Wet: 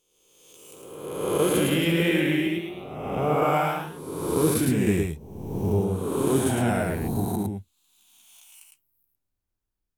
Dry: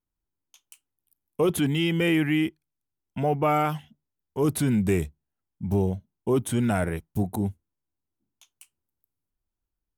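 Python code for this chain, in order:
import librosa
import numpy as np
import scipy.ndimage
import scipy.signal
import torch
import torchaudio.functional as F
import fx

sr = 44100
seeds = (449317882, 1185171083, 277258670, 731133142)

y = fx.spec_swells(x, sr, rise_s=1.42)
y = fx.echo_pitch(y, sr, ms=256, semitones=1, count=3, db_per_echo=-6.0)
y = y + 10.0 ** (-3.5 / 20.0) * np.pad(y, (int(108 * sr / 1000.0), 0))[:len(y)]
y = F.gain(torch.from_numpy(y), -4.0).numpy()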